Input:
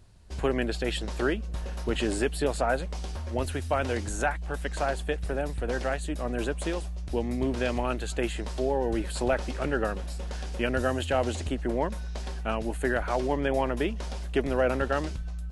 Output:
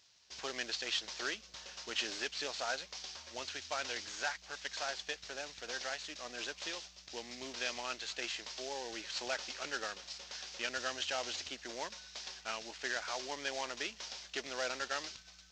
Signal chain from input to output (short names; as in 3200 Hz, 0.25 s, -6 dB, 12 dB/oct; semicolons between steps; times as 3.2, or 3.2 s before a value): CVSD 32 kbps; differentiator; gain +7 dB